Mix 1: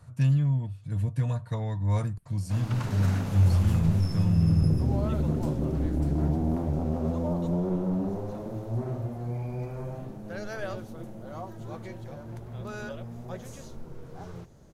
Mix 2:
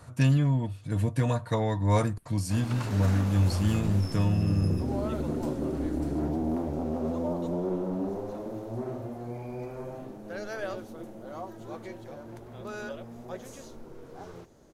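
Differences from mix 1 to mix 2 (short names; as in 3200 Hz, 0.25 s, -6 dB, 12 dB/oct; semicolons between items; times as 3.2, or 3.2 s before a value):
speech +8.5 dB; master: add resonant low shelf 210 Hz -7 dB, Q 1.5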